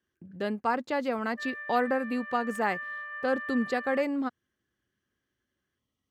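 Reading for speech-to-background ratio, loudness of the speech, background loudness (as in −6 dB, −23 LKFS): 7.5 dB, −30.5 LKFS, −38.0 LKFS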